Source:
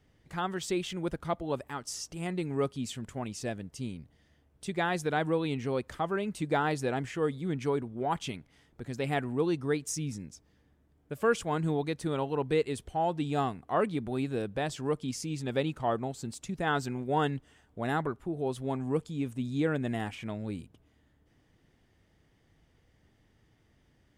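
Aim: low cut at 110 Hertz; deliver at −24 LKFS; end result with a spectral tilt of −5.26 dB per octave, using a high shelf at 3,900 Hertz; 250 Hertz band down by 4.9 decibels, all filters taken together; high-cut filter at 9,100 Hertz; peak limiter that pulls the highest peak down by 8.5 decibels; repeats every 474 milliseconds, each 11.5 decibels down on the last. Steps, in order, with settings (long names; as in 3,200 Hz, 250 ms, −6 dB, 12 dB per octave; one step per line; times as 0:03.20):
high-pass filter 110 Hz
low-pass filter 9,100 Hz
parametric band 250 Hz −6.5 dB
high-shelf EQ 3,900 Hz −7 dB
brickwall limiter −24.5 dBFS
repeating echo 474 ms, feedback 27%, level −11.5 dB
level +12.5 dB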